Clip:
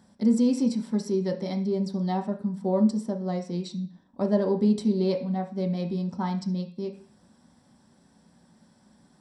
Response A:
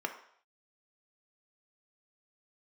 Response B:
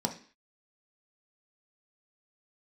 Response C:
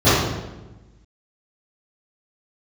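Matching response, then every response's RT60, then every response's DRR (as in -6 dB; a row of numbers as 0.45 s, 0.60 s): B; no single decay rate, 0.45 s, 1.1 s; 4.5 dB, 3.0 dB, -19.5 dB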